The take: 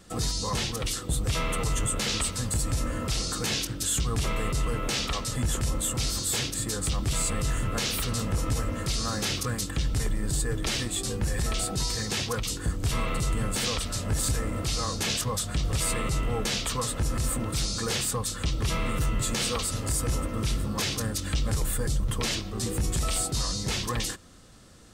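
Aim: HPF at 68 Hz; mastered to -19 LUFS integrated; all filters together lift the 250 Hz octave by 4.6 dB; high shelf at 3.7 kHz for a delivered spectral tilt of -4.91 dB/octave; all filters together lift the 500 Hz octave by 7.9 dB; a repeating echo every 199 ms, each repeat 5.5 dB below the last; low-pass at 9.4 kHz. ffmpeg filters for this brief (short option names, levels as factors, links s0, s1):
-af "highpass=68,lowpass=9400,equalizer=f=250:t=o:g=4,equalizer=f=500:t=o:g=8,highshelf=f=3700:g=-6,aecho=1:1:199|398|597|796|995|1194|1393:0.531|0.281|0.149|0.079|0.0419|0.0222|0.0118,volume=2.51"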